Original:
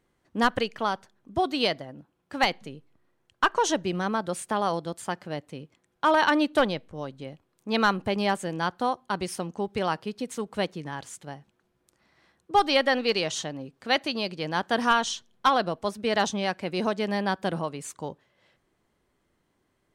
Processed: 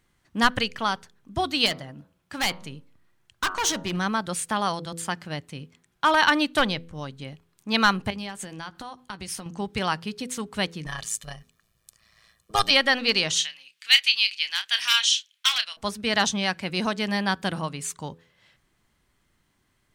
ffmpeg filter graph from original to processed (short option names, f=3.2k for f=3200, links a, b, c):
-filter_complex "[0:a]asettb=1/sr,asplit=3[a][b][c];[a]atrim=end=1.664[d];[b]atrim=start=1.66:end=3.97,asetpts=PTS-STARTPTS,afade=t=in:d=0.004:c=qsin,afade=t=out:st=2.306:d=0.004:c=qsin,bandreject=f=93.23:t=h:w=4,bandreject=f=186.46:t=h:w=4,bandreject=f=279.69:t=h:w=4,bandreject=f=372.92:t=h:w=4,bandreject=f=466.15:t=h:w=4,bandreject=f=559.38:t=h:w=4,bandreject=f=652.61:t=h:w=4,bandreject=f=745.84:t=h:w=4,bandreject=f=839.07:t=h:w=4,bandreject=f=932.3:t=h:w=4,bandreject=f=1.02553k:t=h:w=4,bandreject=f=1.11876k:t=h:w=4,bandreject=f=1.21199k:t=h:w=4,bandreject=f=1.30522k:t=h:w=4,bandreject=f=1.39845k:t=h:w=4,bandreject=f=1.49168k:t=h:w=4,volume=24.5dB,asoftclip=hard,volume=-24.5dB[e];[c]atrim=start=3.966[f];[d][e]acrossfade=d=0.004:c1=hsin:c2=qsin[g];[g][f]acrossfade=d=0.004:c1=qsin:c2=hsin,asettb=1/sr,asplit=3[h][i][j];[h]atrim=end=8.104[k];[i]atrim=start=8.1:end=9.46,asetpts=PTS-STARTPTS,afade=t=in:d=0.004:c=qsin,afade=t=out:st=1.356:d=0.004:c=qsin,acompressor=threshold=-35dB:ratio=5:attack=3.2:release=140:knee=1:detection=peak,asplit=2[l][m];[m]adelay=15,volume=-13dB[n];[l][n]amix=inputs=2:normalize=0,atrim=end_sample=59976[o];[j]atrim=start=9.456[p];[k][o]acrossfade=d=0.004:c1=hsin:c2=qsin[q];[q][p]acrossfade=d=0.004:c1=qsin:c2=hsin,asettb=1/sr,asplit=3[r][s][t];[r]atrim=end=10.864[u];[s]atrim=start=10.86:end=12.71,asetpts=PTS-STARTPTS,afade=t=in:d=0.004:c=qsin,afade=t=out:st=1.846:d=0.004:c=qsin,highshelf=f=4k:g=9,tremolo=f=110:d=0.824,aecho=1:1:1.7:0.68,atrim=end_sample=81585[v];[t]atrim=start=12.706[w];[u][v]acrossfade=d=0.004:c1=hsin:c2=qsin[x];[x][w]acrossfade=d=0.004:c1=qsin:c2=hsin,asettb=1/sr,asplit=3[y][z][aa];[y]atrim=end=13.374[ab];[z]atrim=start=13.37:end=15.77,asetpts=PTS-STARTPTS,afade=t=in:d=0.004:c=qsin,afade=t=out:st=2.396:d=0.004:c=qsin,aeval=exprs='0.2*(abs(mod(val(0)/0.2+3,4)-2)-1)':c=same,highpass=f=2.6k:t=q:w=2,asplit=2[ac][ad];[ad]adelay=30,volume=-10dB[ae];[ac][ae]amix=inputs=2:normalize=0,atrim=end_sample=105840[af];[aa]atrim=start=15.766[ag];[ab][af]acrossfade=d=0.004:c1=hsin:c2=qsin[ah];[ah][ag]acrossfade=d=0.004:c1=qsin:c2=hsin,equalizer=f=470:w=0.59:g=-11.5,bandreject=f=83.5:t=h:w=4,bandreject=f=167:t=h:w=4,bandreject=f=250.5:t=h:w=4,bandreject=f=334:t=h:w=4,bandreject=f=417.5:t=h:w=4,bandreject=f=501:t=h:w=4,volume=7.5dB"